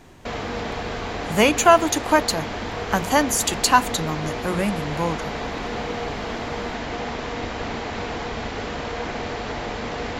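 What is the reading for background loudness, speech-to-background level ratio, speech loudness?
-29.0 LUFS, 8.5 dB, -20.5 LUFS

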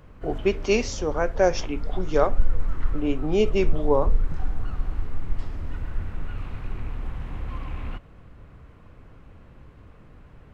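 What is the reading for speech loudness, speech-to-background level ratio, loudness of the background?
-25.5 LUFS, 8.5 dB, -34.0 LUFS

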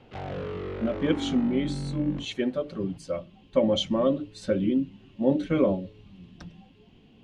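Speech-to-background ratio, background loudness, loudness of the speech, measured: 7.0 dB, -34.5 LUFS, -27.5 LUFS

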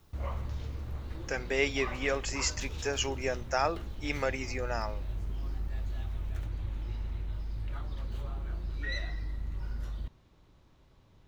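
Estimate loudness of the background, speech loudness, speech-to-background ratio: -39.5 LUFS, -33.0 LUFS, 6.5 dB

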